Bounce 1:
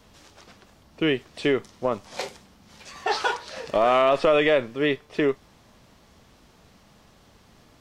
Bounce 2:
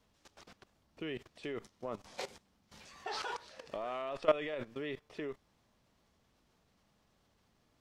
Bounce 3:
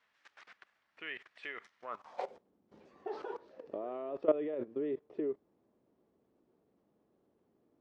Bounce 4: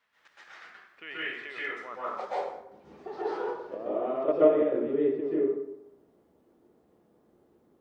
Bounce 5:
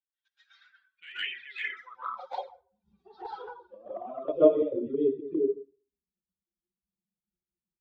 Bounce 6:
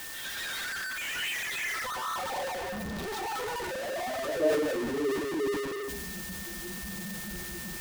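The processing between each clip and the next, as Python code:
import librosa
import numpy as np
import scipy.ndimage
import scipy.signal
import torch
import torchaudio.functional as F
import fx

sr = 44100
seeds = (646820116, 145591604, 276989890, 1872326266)

y1 = fx.level_steps(x, sr, step_db=17)
y1 = y1 * 10.0 ** (-5.0 / 20.0)
y2 = fx.filter_sweep_bandpass(y1, sr, from_hz=1800.0, to_hz=360.0, start_s=1.81, end_s=2.52, q=2.2)
y2 = y2 * 10.0 ** (8.0 / 20.0)
y3 = fx.rev_plate(y2, sr, seeds[0], rt60_s=0.82, hf_ratio=0.65, predelay_ms=115, drr_db=-9.0)
y4 = fx.bin_expand(y3, sr, power=2.0)
y4 = fx.lowpass_res(y4, sr, hz=3300.0, q=2.2)
y4 = fx.env_flanger(y4, sr, rest_ms=5.7, full_db=-30.0)
y4 = y4 * 10.0 ** (4.0 / 20.0)
y5 = y4 + 0.5 * 10.0 ** (-22.0 / 20.0) * np.sign(y4)
y5 = y5 + 10.0 ** (-37.0 / 20.0) * np.sin(2.0 * np.pi * 1800.0 * np.arange(len(y5)) / sr)
y5 = fx.transient(y5, sr, attack_db=-3, sustain_db=6)
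y5 = y5 * 10.0 ** (-7.5 / 20.0)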